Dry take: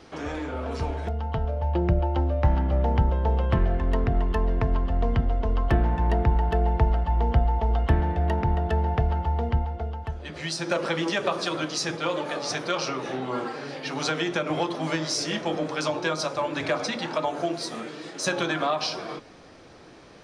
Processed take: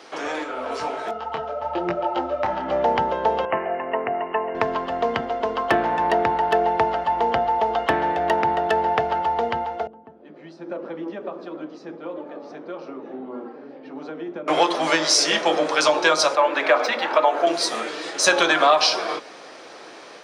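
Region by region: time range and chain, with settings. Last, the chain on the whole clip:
0:00.43–0:02.67: steady tone 1,300 Hz −43 dBFS + micro pitch shift up and down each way 34 cents
0:03.45–0:04.55: Chebyshev low-pass with heavy ripple 2,900 Hz, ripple 6 dB + low-shelf EQ 83 Hz −9.5 dB
0:09.87–0:14.48: resonant band-pass 230 Hz, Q 2.3 + high-frequency loss of the air 56 metres
0:16.35–0:17.47: running median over 3 samples + three-way crossover with the lows and the highs turned down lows −16 dB, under 210 Hz, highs −13 dB, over 3,100 Hz + mains-hum notches 50/100/150/200/250/300/350/400/450 Hz
whole clip: high-pass filter 460 Hz 12 dB per octave; automatic gain control gain up to 3 dB; level +7.5 dB

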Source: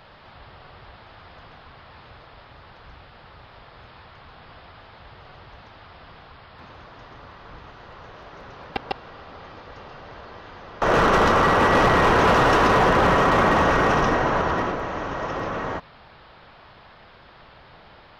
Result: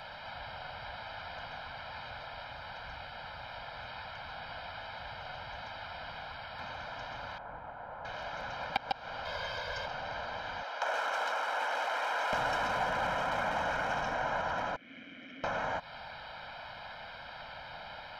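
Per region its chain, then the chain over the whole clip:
0:07.38–0:08.05: low-pass filter 1,100 Hz + low-shelf EQ 180 Hz −6.5 dB
0:09.25–0:09.86: high-shelf EQ 3,100 Hz +7.5 dB + comb filter 1.9 ms, depth 64%
0:10.63–0:12.33: Bessel high-pass filter 500 Hz, order 6 + downward compressor 2.5 to 1, threshold −34 dBFS
0:14.76–0:15.44: ring modulation 88 Hz + formant filter i + high-shelf EQ 6,600 Hz −6.5 dB
whole clip: downward compressor 12 to 1, threshold −32 dBFS; low-shelf EQ 280 Hz −12 dB; comb filter 1.3 ms, depth 86%; level +2 dB

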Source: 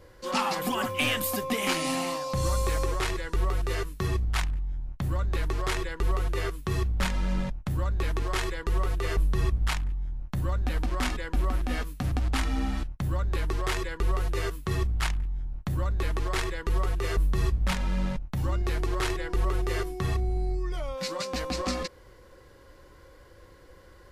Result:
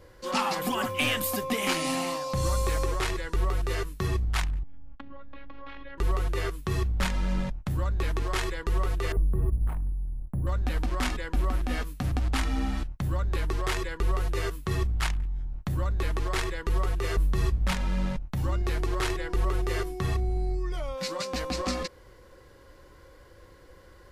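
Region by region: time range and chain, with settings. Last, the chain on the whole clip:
0:04.63–0:05.98: inverse Chebyshev low-pass filter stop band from 8,000 Hz, stop band 50 dB + downward compressor 10 to 1, threshold −34 dBFS + phases set to zero 277 Hz
0:09.12–0:10.47: Bessel low-pass filter 520 Hz + bad sample-rate conversion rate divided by 4×, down none, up hold
whole clip: no processing

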